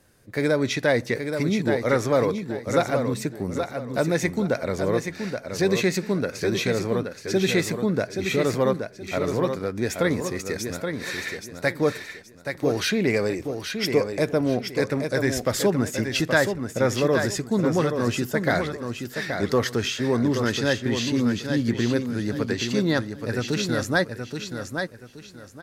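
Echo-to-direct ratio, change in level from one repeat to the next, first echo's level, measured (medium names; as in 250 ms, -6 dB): -6.0 dB, -11.0 dB, -6.5 dB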